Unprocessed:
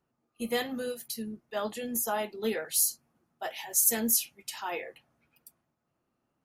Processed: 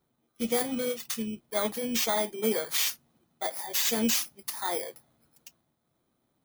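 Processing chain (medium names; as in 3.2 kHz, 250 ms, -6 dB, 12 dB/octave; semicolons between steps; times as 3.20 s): bit-reversed sample order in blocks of 16 samples; peak limiter -20.5 dBFS, peak gain reduction 9.5 dB; trim +4 dB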